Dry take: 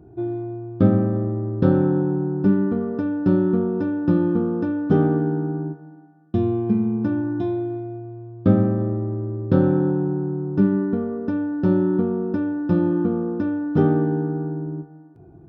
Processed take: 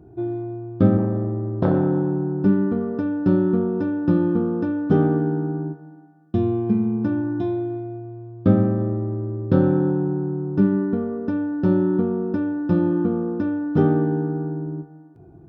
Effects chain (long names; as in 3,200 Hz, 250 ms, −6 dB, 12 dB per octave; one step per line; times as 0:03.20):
0:00.97–0:02.44: saturating transformer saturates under 450 Hz